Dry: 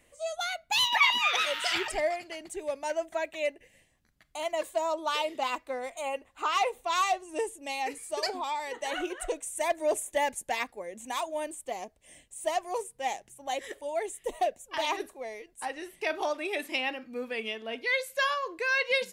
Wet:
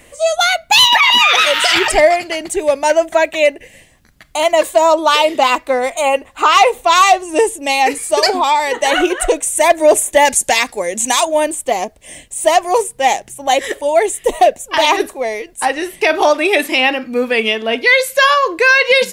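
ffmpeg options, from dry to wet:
-filter_complex "[0:a]asettb=1/sr,asplit=3[a][b][c];[a]atrim=end=10.254[d];[b]atrim=start=10.25:end=11.25,asetpts=PTS-STARTPTS,afade=t=in:d=0.004:c=qsin,afade=t=out:st=0.996:d=0.004:c=qsin,equalizer=f=6.8k:w=0.49:g=11[e];[c]atrim=start=11.246[f];[d][e]acrossfade=d=0.004:c1=hsin:c2=qsin[g];[g][f]acrossfade=d=0.004:c1=qsin:c2=hsin,alimiter=level_in=20.5dB:limit=-1dB:release=50:level=0:latency=1,volume=-1dB"

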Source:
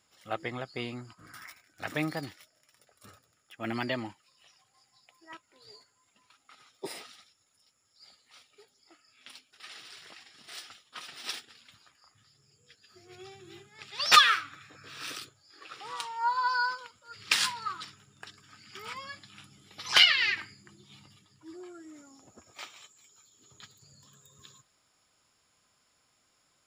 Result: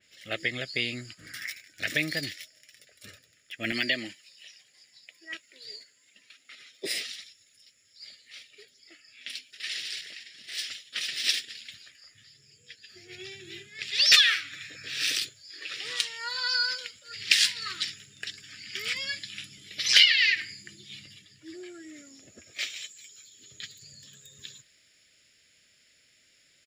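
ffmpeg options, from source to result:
-filter_complex "[0:a]asettb=1/sr,asplit=3[a][b][c];[a]atrim=end=3.724[d];[b]atrim=start=3.72:end=6.9,asetpts=PTS-STARTPTS,afade=t=in:d=0.004:c=qsin,afade=t=out:st=3.176:d=0.004:c=qsin,highpass=170[e];[c]atrim=start=6.896[f];[d][e]acrossfade=d=0.004:c1=hsin:c2=qsin[g];[g][f]acrossfade=d=0.004:c1=qsin:c2=hsin,asplit=3[h][i][j];[h]atrim=end=10.012[k];[i]atrim=start=10.008:end=10.592,asetpts=PTS-STARTPTS,volume=-4.5dB[l];[j]atrim=start=10.588[m];[k][l]acrossfade=d=0.004:c1=hsin:c2=hsin[n];[n][m]acrossfade=d=0.004:c1=hsin:c2=hsin,firequalizer=gain_entry='entry(620,0);entry(880,-22);entry(1800,10);entry(9400,1)':delay=0.05:min_phase=1,acompressor=threshold=-30dB:ratio=2,adynamicequalizer=threshold=0.00562:dfrequency=3300:dqfactor=0.7:tfrequency=3300:tqfactor=0.7:attack=5:release=100:ratio=0.375:range=3.5:mode=boostabove:tftype=highshelf,volume=2.5dB"

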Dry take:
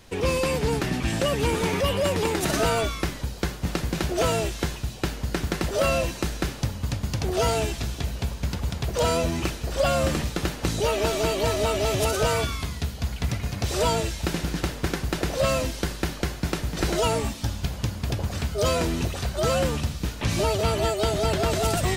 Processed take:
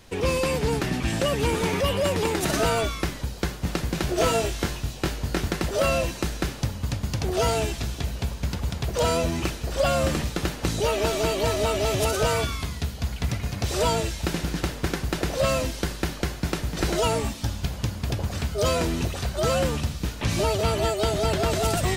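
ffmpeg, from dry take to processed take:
-filter_complex "[0:a]asettb=1/sr,asplit=3[a][b][c];[a]atrim=end=4.054[d];[b]atrim=start=4.05:end=5.51,asetpts=PTS-STARTPTS,afade=t=in:d=0.004:c=qsin,afade=t=out:st=1.456:d=0.004:c=qsin,asplit=2[e][f];[f]adelay=22,volume=-4.5dB[g];[e][g]amix=inputs=2:normalize=0,atrim=end_sample=64386[h];[c]atrim=start=5.506[i];[d][h]acrossfade=d=0.004:c1=hsin:c2=qsin[j];[j][i]acrossfade=d=0.004:c1=qsin:c2=hsin"

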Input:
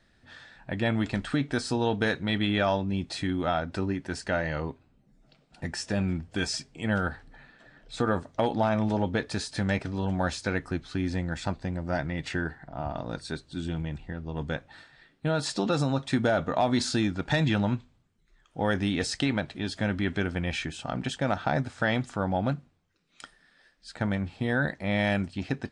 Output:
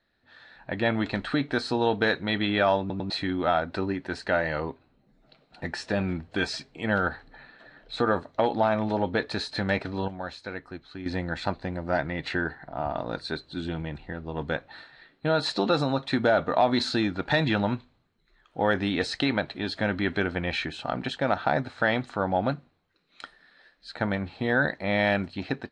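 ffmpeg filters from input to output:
-filter_complex "[0:a]asplit=6[a][b][c][d][e][f];[a]atrim=end=2.902[g];[b]atrim=start=2.798:end=2.902[h];[c]atrim=start=2.798:end=2.902[i];[d]atrim=start=3.098:end=10.082[j];[e]atrim=start=10.078:end=11.062,asetpts=PTS-STARTPTS,volume=-10dB[k];[f]atrim=start=11.058[l];[g][h]acrossfade=d=0.004:c1=hsin:c2=hsin[m];[m][i]acrossfade=d=0.004:c1=hsin:c2=hsin[n];[n][j]acrossfade=d=0.004:c1=hsin:c2=hsin[o];[o][k]acrossfade=d=0.004:c1=hsin:c2=hsin[p];[p][l]acrossfade=d=0.004:c1=hsin:c2=hsin,bass=f=250:g=-8,treble=f=4k:g=-15,dynaudnorm=f=320:g=3:m=11.5dB,equalizer=f=4.1k:w=6.5:g=13.5,volume=-6.5dB"

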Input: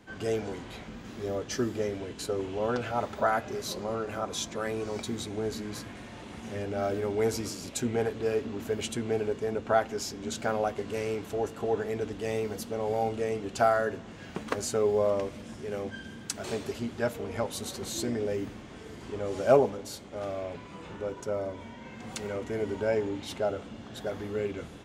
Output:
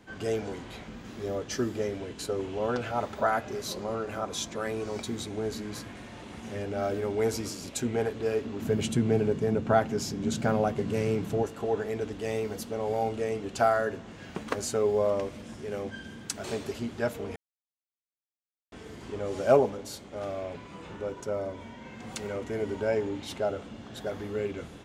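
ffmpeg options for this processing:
-filter_complex "[0:a]asettb=1/sr,asplit=3[a][b][c];[a]atrim=end=8.624[d];[b]atrim=start=8.62:end=11.43,asetpts=PTS-STARTPTS,afade=t=in:d=0.004:c=qsin,afade=t=out:st=2.806:d=0.004:c=qsin,equalizer=f=150:t=o:w=1.6:g=13[e];[c]atrim=start=11.426[f];[d][e]acrossfade=d=0.004:c1=hsin:c2=qsin[g];[g][f]acrossfade=d=0.004:c1=qsin:c2=hsin,asplit=3[h][i][j];[h]atrim=end=17.36,asetpts=PTS-STARTPTS,afade=t=out:st=17.356:d=0.004:c=hsin[k];[i]atrim=start=17.36:end=18.72,asetpts=PTS-STARTPTS,volume=0[l];[j]atrim=start=18.72,asetpts=PTS-STARTPTS,afade=t=in:d=0.004:c=hsin[m];[k][l][m]concat=n=3:v=0:a=1"

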